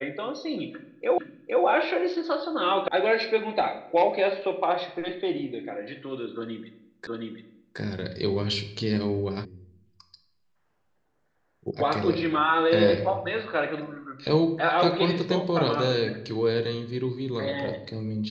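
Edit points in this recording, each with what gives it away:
0:01.18: the same again, the last 0.46 s
0:02.88: cut off before it has died away
0:07.07: the same again, the last 0.72 s
0:09.45: cut off before it has died away
0:11.71: cut off before it has died away

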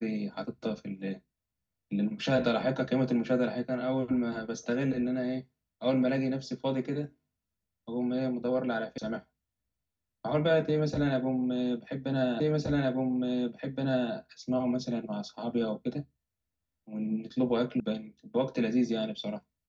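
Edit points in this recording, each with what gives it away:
0:08.98: cut off before it has died away
0:12.40: the same again, the last 1.72 s
0:17.80: cut off before it has died away

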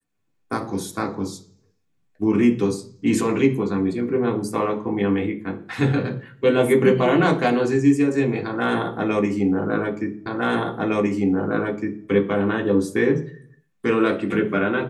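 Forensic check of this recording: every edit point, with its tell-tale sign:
0:10.26: the same again, the last 1.81 s

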